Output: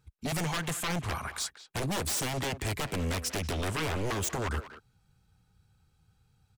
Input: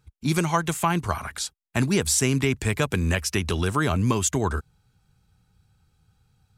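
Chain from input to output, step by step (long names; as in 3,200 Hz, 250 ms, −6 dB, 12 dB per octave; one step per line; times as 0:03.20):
wave folding −22.5 dBFS
far-end echo of a speakerphone 190 ms, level −9 dB
level −3.5 dB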